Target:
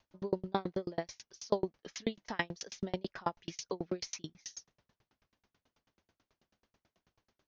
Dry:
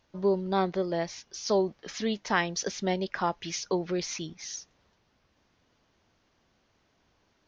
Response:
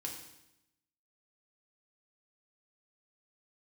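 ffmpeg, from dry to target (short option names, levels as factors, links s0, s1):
-af "aeval=exprs='val(0)*pow(10,-38*if(lt(mod(9.2*n/s,1),2*abs(9.2)/1000),1-mod(9.2*n/s,1)/(2*abs(9.2)/1000),(mod(9.2*n/s,1)-2*abs(9.2)/1000)/(1-2*abs(9.2)/1000))/20)':c=same,volume=1.12"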